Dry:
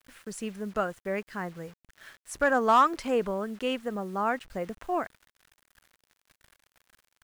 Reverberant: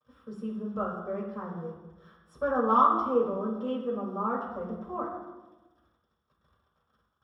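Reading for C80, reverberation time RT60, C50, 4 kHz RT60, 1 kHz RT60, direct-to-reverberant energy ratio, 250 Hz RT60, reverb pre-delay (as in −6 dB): 6.0 dB, 1.2 s, 3.0 dB, 0.85 s, 1.0 s, −7.0 dB, 1.4 s, 3 ms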